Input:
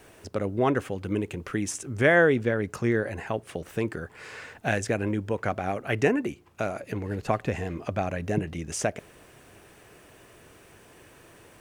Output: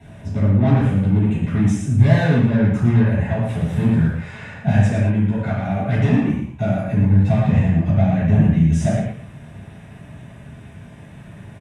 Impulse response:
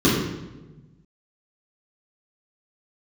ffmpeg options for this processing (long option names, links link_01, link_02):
-filter_complex "[0:a]asettb=1/sr,asplit=3[link_01][link_02][link_03];[link_01]atrim=end=3.414[link_04];[link_02]atrim=start=3.41:end=4.08,asetpts=PTS-STARTPTS,afade=type=in:duration=0.004:curve=qsin,afade=type=out:start_time=0.666:duration=0.004:curve=qsin,aeval=exprs='val(0)+0.5*0.0075*sgn(val(0))':channel_layout=same[link_05];[link_03]atrim=start=4.076[link_06];[link_04][link_05]acrossfade=duration=0.004:curve1=hsin:curve2=qsin[link_07];[link_07][link_06]acrossfade=duration=0.004:curve1=qsin:curve2=hsin,asettb=1/sr,asplit=3[link_08][link_09][link_10];[link_08]atrim=end=4.884[link_11];[link_09]atrim=start=4.88:end=5.75,asetpts=PTS-STARTPTS,afade=type=in:duration=0.004:curve=qsin,afade=type=out:start_time=0.866:duration=0.004:curve=qsin,lowshelf=frequency=480:gain=-7[link_12];[link_10]atrim=start=5.746[link_13];[link_11][link_12]acrossfade=duration=0.004:curve1=hsin:curve2=qsin[link_14];[link_14][link_13]acrossfade=duration=0.004:curve1=qsin:curve2=hsin,asoftclip=type=tanh:threshold=-25dB,aecho=1:1:113:0.422[link_15];[1:a]atrim=start_sample=2205,atrim=end_sample=3528,asetrate=25137,aresample=44100[link_16];[link_15][link_16]afir=irnorm=-1:irlink=0,volume=-15.5dB"